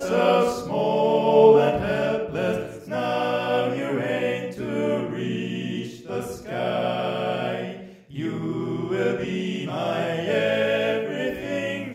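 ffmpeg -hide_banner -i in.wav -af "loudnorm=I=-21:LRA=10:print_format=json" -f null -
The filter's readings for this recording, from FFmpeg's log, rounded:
"input_i" : "-24.1",
"input_tp" : "-4.3",
"input_lra" : "6.8",
"input_thresh" : "-34.2",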